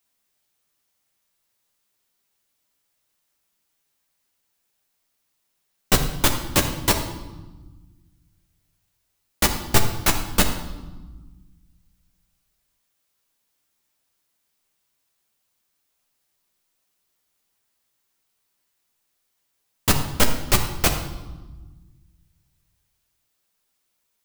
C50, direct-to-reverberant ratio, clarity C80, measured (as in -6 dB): 7.5 dB, 2.5 dB, 9.5 dB